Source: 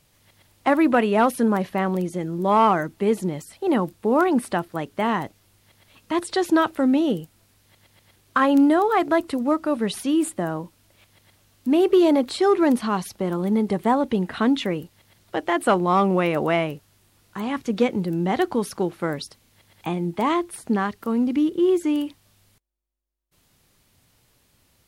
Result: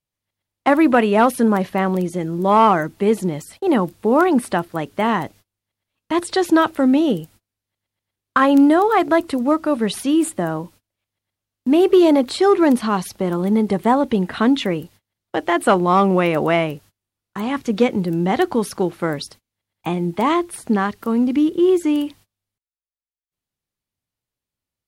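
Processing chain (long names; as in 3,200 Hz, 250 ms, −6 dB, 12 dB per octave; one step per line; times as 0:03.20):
noise gate −47 dBFS, range −29 dB
level +4 dB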